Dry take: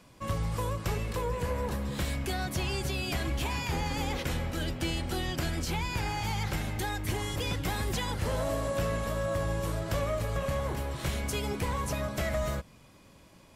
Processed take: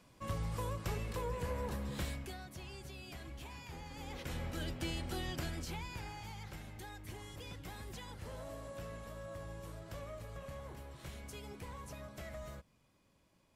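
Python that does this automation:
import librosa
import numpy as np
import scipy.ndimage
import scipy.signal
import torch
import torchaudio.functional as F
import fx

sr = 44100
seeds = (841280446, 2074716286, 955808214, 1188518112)

y = fx.gain(x, sr, db=fx.line((2.04, -7.0), (2.45, -17.0), (3.9, -17.0), (4.45, -7.5), (5.34, -7.5), (6.36, -16.0)))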